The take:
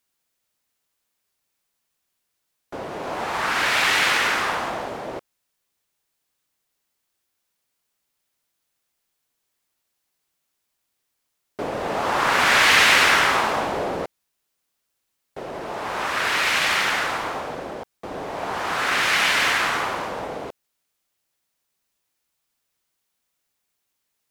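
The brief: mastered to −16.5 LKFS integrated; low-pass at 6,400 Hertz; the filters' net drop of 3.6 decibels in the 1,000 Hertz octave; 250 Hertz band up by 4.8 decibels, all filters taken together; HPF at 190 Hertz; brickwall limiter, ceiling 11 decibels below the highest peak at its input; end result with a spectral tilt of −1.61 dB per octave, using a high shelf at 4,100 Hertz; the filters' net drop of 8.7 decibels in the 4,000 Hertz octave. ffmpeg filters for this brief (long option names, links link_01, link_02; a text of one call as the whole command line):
ffmpeg -i in.wav -af "highpass=190,lowpass=6400,equalizer=frequency=250:width_type=o:gain=8,equalizer=frequency=1000:width_type=o:gain=-4,equalizer=frequency=4000:width_type=o:gain=-7,highshelf=frequency=4100:gain=-8,volume=11.5dB,alimiter=limit=-7dB:level=0:latency=1" out.wav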